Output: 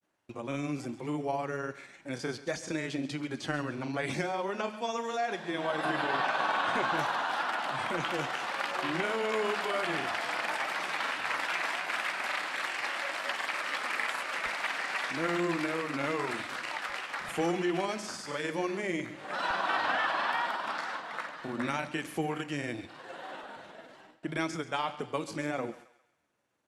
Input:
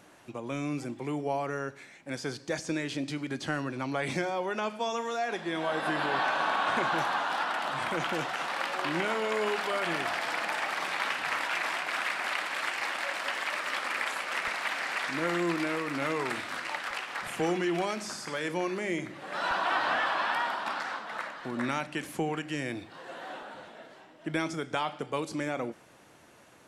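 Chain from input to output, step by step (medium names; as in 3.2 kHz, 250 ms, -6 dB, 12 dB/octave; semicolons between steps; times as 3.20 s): gate with hold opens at -43 dBFS; granulator, spray 22 ms, pitch spread up and down by 0 st; thinning echo 135 ms, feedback 44%, high-pass 630 Hz, level -15 dB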